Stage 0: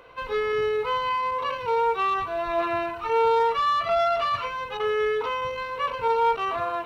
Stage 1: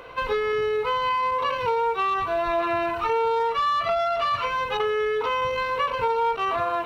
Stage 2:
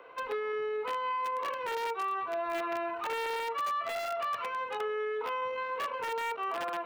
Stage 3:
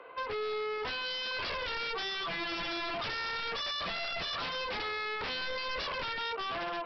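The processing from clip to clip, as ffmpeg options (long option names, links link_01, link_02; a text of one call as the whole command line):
ffmpeg -i in.wav -af "acompressor=threshold=-29dB:ratio=6,volume=7.5dB" out.wav
ffmpeg -i in.wav -filter_complex "[0:a]acrossover=split=130|360|2600[link_01][link_02][link_03][link_04];[link_03]aeval=exprs='(mod(8.41*val(0)+1,2)-1)/8.41':channel_layout=same[link_05];[link_01][link_02][link_05][link_04]amix=inputs=4:normalize=0,acrossover=split=240 2800:gain=0.1 1 0.224[link_06][link_07][link_08];[link_06][link_07][link_08]amix=inputs=3:normalize=0,volume=-8.5dB" out.wav
ffmpeg -i in.wav -af "dynaudnorm=framelen=120:gausssize=13:maxgain=5dB,aresample=11025,aeval=exprs='0.0237*(abs(mod(val(0)/0.0237+3,4)-2)-1)':channel_layout=same,aresample=44100,volume=1.5dB" out.wav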